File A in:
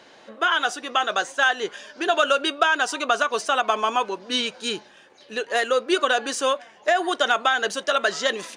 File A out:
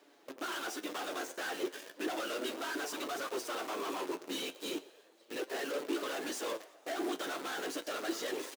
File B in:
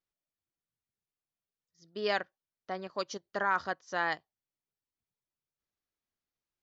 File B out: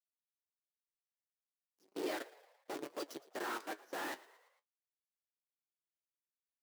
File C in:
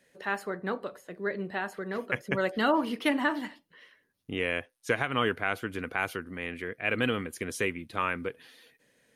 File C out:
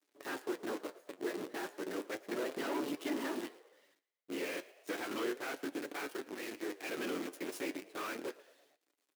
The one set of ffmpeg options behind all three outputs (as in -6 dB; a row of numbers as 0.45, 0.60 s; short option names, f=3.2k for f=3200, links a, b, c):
-filter_complex "[0:a]afftfilt=real='hypot(re,im)*cos(2*PI*random(0))':imag='hypot(re,im)*sin(2*PI*random(1))':win_size=512:overlap=0.75,acrusher=bits=8:dc=4:mix=0:aa=0.000001,aeval=exprs='(tanh(79.4*val(0)+0.75)-tanh(0.75))/79.4':c=same,flanger=delay=6.9:depth=4.5:regen=54:speed=0.34:shape=sinusoidal,highpass=f=320:t=q:w=3.5,asplit=2[a][b];[b]asplit=4[c][d][e][f];[c]adelay=113,afreqshift=56,volume=-20dB[g];[d]adelay=226,afreqshift=112,volume=-25dB[h];[e]adelay=339,afreqshift=168,volume=-30.1dB[i];[f]adelay=452,afreqshift=224,volume=-35.1dB[j];[g][h][i][j]amix=inputs=4:normalize=0[k];[a][k]amix=inputs=2:normalize=0,volume=4dB"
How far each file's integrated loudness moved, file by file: -15.5, -9.5, -9.5 LU